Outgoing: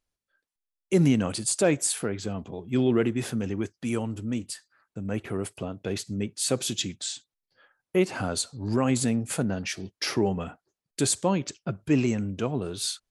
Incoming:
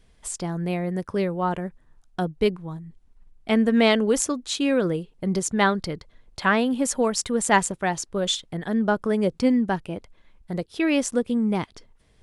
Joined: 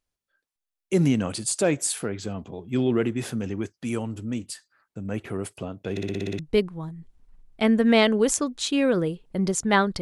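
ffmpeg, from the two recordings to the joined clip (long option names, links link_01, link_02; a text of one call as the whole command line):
ffmpeg -i cue0.wav -i cue1.wav -filter_complex "[0:a]apad=whole_dur=10.01,atrim=end=10.01,asplit=8[link_01][link_02][link_03][link_04][link_05][link_06][link_07][link_08];[link_01]atrim=end=5.972[link_09];[link_02]atrim=start=5.908:end=5.972[link_10];[link_03]atrim=start=5.908:end=5.972[link_11];[link_04]atrim=start=5.908:end=5.972[link_12];[link_05]atrim=start=5.908:end=5.972[link_13];[link_06]atrim=start=5.908:end=5.972[link_14];[link_07]atrim=start=5.908:end=5.972[link_15];[link_08]atrim=start=5.908:end=5.972[link_16];[1:a]atrim=start=2.268:end=5.89[link_17];[link_09][link_10]acrossfade=duration=0.004:curve1=hsin:curve2=hsin[link_18];[link_18][link_11]acrossfade=duration=0.004:curve1=hsin:curve2=hsin[link_19];[link_19][link_12]acrossfade=duration=0.004:curve1=hsin:curve2=hsin[link_20];[link_20][link_13]acrossfade=duration=0.004:curve1=hsin:curve2=hsin[link_21];[link_21][link_14]acrossfade=duration=0.004:curve1=hsin:curve2=hsin[link_22];[link_22][link_15]acrossfade=duration=0.004:curve1=hsin:curve2=hsin[link_23];[link_23][link_16]acrossfade=duration=0.004:curve1=hsin:curve2=hsin[link_24];[link_24][link_17]acrossfade=duration=0.004:curve1=hsin:curve2=hsin" out.wav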